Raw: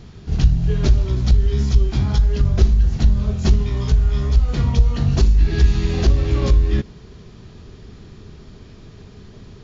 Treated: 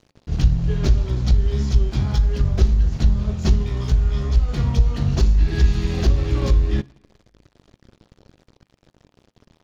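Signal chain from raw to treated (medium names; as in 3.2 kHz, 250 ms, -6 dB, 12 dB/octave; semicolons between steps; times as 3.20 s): crossover distortion -36 dBFS; on a send: reverberation RT60 1.1 s, pre-delay 3 ms, DRR 18 dB; on the sum: trim -1.5 dB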